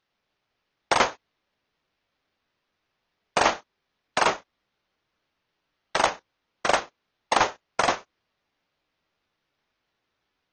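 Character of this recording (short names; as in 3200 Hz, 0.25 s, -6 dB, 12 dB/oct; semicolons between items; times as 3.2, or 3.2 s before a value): aliases and images of a low sample rate 7400 Hz, jitter 0%; AAC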